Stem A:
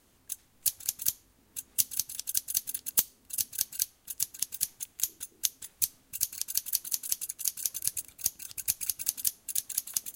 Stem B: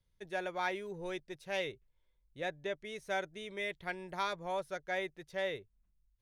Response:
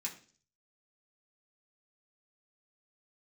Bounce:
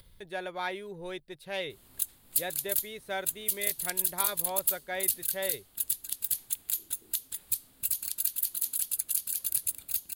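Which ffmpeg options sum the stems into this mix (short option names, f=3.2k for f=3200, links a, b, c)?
-filter_complex "[0:a]alimiter=limit=-10dB:level=0:latency=1:release=286,adelay=1700,volume=2.5dB[a];[1:a]volume=1dB[b];[a][b]amix=inputs=2:normalize=0,acompressor=mode=upward:threshold=-42dB:ratio=2.5,aexciter=amount=1.2:drive=4.5:freq=3.3k,alimiter=limit=-12.5dB:level=0:latency=1:release=22"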